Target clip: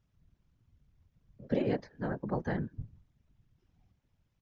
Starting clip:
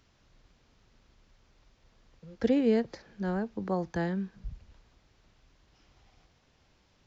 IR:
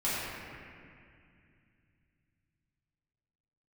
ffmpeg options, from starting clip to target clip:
-filter_complex "[0:a]afftdn=noise_reduction=15:noise_floor=-55,equalizer=frequency=4500:width=2.9:gain=-4.5,atempo=1.6,acrossover=split=230|450|2700[link_01][link_02][link_03][link_04];[link_02]acompressor=threshold=-43dB:ratio=4[link_05];[link_01][link_05][link_03][link_04]amix=inputs=4:normalize=0,afftfilt=real='hypot(re,im)*cos(2*PI*random(0))':imag='hypot(re,im)*sin(2*PI*random(1))':win_size=512:overlap=0.75,volume=5dB"

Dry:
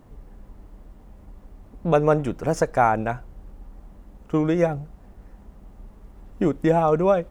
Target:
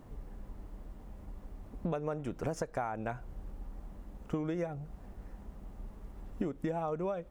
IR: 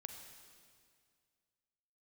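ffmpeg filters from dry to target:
-af "acompressor=threshold=-29dB:ratio=20,volume=-2dB"

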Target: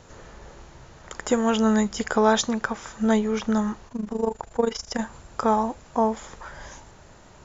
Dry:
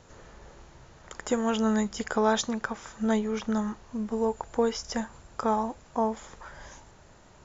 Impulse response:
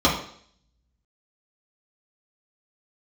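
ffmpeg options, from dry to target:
-filter_complex "[0:a]asplit=3[link_01][link_02][link_03];[link_01]afade=type=out:start_time=3.87:duration=0.02[link_04];[link_02]tremolo=f=25:d=0.824,afade=type=in:start_time=3.87:duration=0.02,afade=type=out:start_time=4.98:duration=0.02[link_05];[link_03]afade=type=in:start_time=4.98:duration=0.02[link_06];[link_04][link_05][link_06]amix=inputs=3:normalize=0,volume=5dB"

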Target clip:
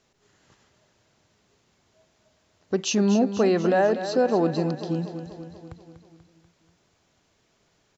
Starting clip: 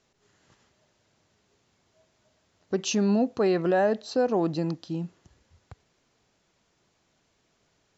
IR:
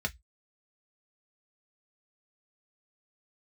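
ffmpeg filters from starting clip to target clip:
-af "aecho=1:1:243|486|729|972|1215|1458|1701:0.282|0.169|0.101|0.0609|0.0365|0.0219|0.0131,volume=2.5dB"

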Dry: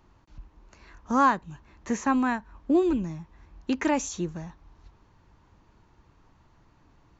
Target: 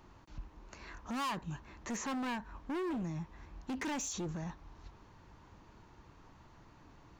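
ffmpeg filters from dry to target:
ffmpeg -i in.wav -af "volume=29dB,asoftclip=hard,volume=-29dB,lowshelf=frequency=110:gain=-4.5,alimiter=level_in=12dB:limit=-24dB:level=0:latency=1:release=19,volume=-12dB,volume=3dB" out.wav

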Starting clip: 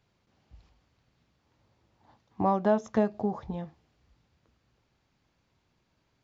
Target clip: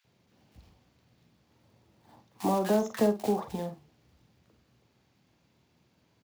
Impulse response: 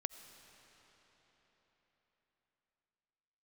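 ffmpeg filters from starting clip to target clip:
-filter_complex "[0:a]highpass=110,lowshelf=frequency=280:gain=5.5,bandreject=frequency=50:width_type=h:width=6,bandreject=frequency=100:width_type=h:width=6,bandreject=frequency=150:width_type=h:width=6,acrossover=split=270|360|1900[link_01][link_02][link_03][link_04];[link_03]alimiter=level_in=1dB:limit=-24dB:level=0:latency=1,volume=-1dB[link_05];[link_01][link_02][link_05][link_04]amix=inputs=4:normalize=0,acrossover=split=270|3000[link_06][link_07][link_08];[link_06]acompressor=threshold=-45dB:ratio=3[link_09];[link_09][link_07][link_08]amix=inputs=3:normalize=0,acrusher=bits=4:mode=log:mix=0:aa=0.000001,asplit=2[link_10][link_11];[link_11]adelay=48,volume=-10.5dB[link_12];[link_10][link_12]amix=inputs=2:normalize=0,acrossover=split=1300[link_13][link_14];[link_13]adelay=40[link_15];[link_15][link_14]amix=inputs=2:normalize=0,volume=3.5dB"

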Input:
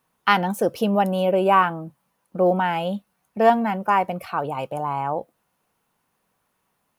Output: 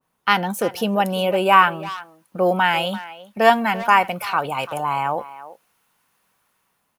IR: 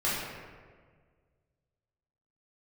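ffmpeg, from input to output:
-filter_complex "[0:a]acrossover=split=1000[link_01][link_02];[link_02]dynaudnorm=framelen=330:gausssize=5:maxgain=8dB[link_03];[link_01][link_03]amix=inputs=2:normalize=0,asplit=2[link_04][link_05];[link_05]adelay=340,highpass=300,lowpass=3400,asoftclip=type=hard:threshold=-11dB,volume=-15dB[link_06];[link_04][link_06]amix=inputs=2:normalize=0,adynamicequalizer=threshold=0.0398:dfrequency=1600:dqfactor=0.7:tfrequency=1600:tqfactor=0.7:attack=5:release=100:ratio=0.375:range=2.5:mode=boostabove:tftype=highshelf,volume=-1dB"

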